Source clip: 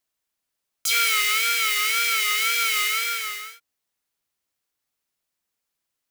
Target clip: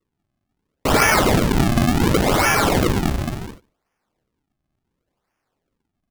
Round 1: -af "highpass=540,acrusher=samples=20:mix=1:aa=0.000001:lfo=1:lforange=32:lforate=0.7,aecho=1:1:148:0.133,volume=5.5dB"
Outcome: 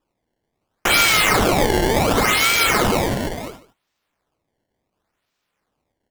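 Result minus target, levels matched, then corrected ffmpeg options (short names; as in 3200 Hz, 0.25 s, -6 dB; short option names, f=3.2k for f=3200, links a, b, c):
decimation with a swept rate: distortion -22 dB; echo-to-direct +11.5 dB
-af "highpass=540,acrusher=samples=53:mix=1:aa=0.000001:lfo=1:lforange=84.8:lforate=0.7,aecho=1:1:148:0.0355,volume=5.5dB"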